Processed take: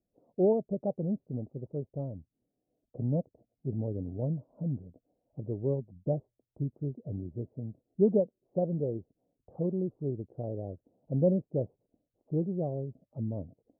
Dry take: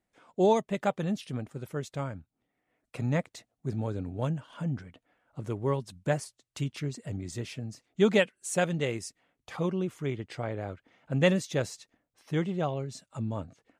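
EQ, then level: steep low-pass 640 Hz 36 dB/oct; -1.0 dB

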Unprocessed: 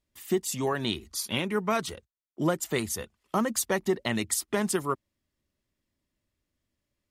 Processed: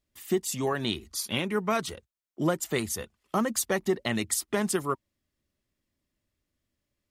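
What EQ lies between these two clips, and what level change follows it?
notch 950 Hz, Q 21; 0.0 dB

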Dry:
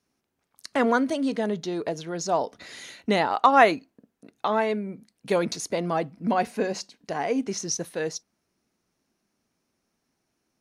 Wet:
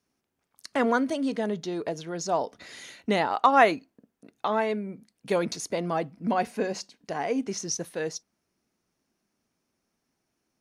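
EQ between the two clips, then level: notch 4000 Hz, Q 30; -2.0 dB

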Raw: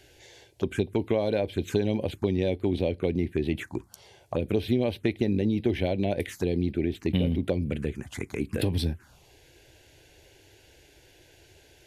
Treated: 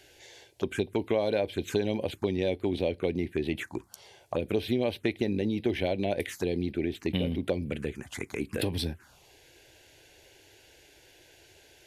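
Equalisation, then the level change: low shelf 270 Hz -8.5 dB; +1.0 dB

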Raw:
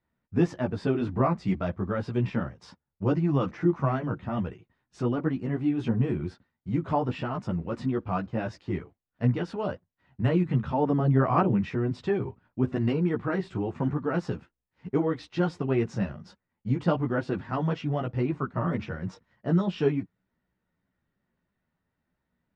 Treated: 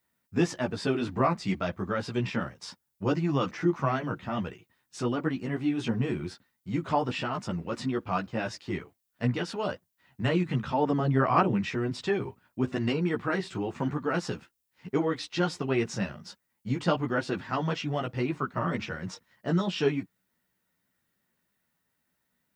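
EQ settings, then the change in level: tilt +4.5 dB/oct; low shelf 380 Hz +10 dB; 0.0 dB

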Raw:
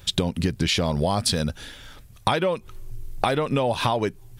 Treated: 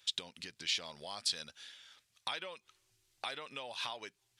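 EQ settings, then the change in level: differentiator; tape spacing loss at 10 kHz 28 dB; high shelf 2100 Hz +11 dB; -1.5 dB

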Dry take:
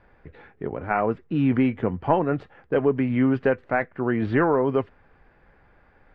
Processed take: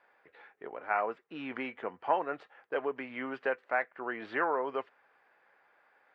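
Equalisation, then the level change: HPF 660 Hz 12 dB/oct; -4.5 dB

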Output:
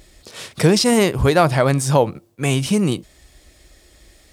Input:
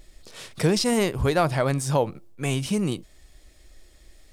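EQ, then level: HPF 47 Hz; +7.0 dB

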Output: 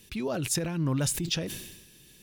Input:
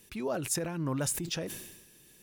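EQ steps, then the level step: low shelf 300 Hz +11 dB; bell 3600 Hz +9.5 dB 1.8 oct; high shelf 11000 Hz +4.5 dB; -2.5 dB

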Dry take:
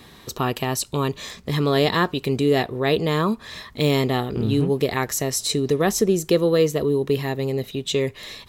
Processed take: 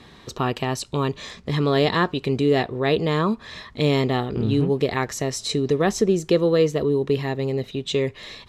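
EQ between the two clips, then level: air absorption 69 m; 0.0 dB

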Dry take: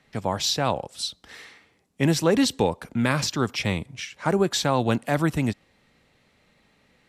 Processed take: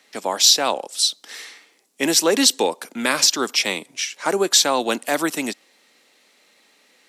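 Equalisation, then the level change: HPF 270 Hz 24 dB/oct; high shelf 3500 Hz +12 dB; bell 5800 Hz +2 dB; +2.5 dB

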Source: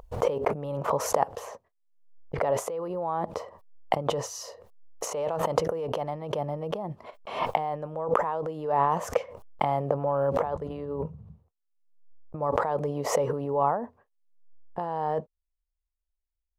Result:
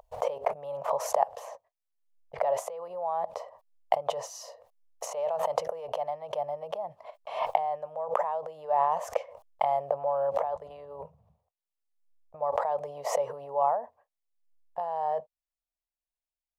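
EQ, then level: resonant low shelf 450 Hz -12 dB, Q 3; bell 1400 Hz -5.5 dB 0.47 oct; -5.0 dB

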